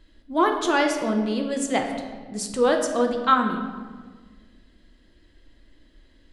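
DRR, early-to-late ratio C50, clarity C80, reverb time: 3.0 dB, 6.0 dB, 7.5 dB, 1.6 s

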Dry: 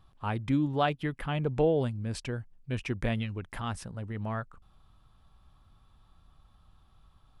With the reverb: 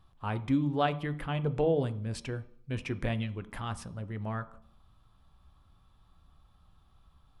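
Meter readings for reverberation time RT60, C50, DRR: 0.60 s, 16.5 dB, 11.0 dB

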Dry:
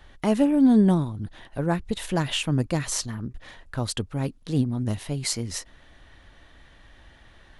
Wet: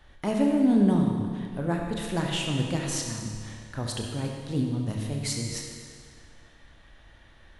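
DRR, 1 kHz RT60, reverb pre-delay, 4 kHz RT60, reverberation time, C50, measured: 0.5 dB, 2.0 s, 28 ms, 1.9 s, 2.0 s, 2.0 dB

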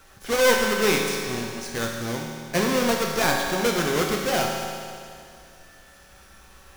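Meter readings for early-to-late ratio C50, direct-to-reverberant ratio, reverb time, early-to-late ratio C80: 1.5 dB, -1.0 dB, 2.3 s, 3.0 dB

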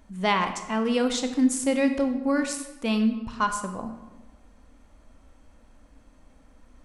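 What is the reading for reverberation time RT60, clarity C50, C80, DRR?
1.2 s, 9.0 dB, 11.0 dB, 7.0 dB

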